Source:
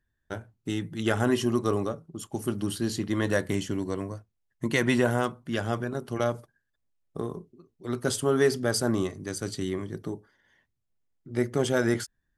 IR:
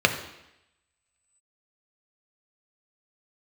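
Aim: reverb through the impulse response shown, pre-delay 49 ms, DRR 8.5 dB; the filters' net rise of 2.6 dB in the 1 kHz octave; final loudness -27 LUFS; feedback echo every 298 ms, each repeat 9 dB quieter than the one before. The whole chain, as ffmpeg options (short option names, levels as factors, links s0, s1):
-filter_complex "[0:a]equalizer=f=1000:t=o:g=3.5,aecho=1:1:298|596|894|1192:0.355|0.124|0.0435|0.0152,asplit=2[s0][s1];[1:a]atrim=start_sample=2205,adelay=49[s2];[s1][s2]afir=irnorm=-1:irlink=0,volume=0.0501[s3];[s0][s3]amix=inputs=2:normalize=0"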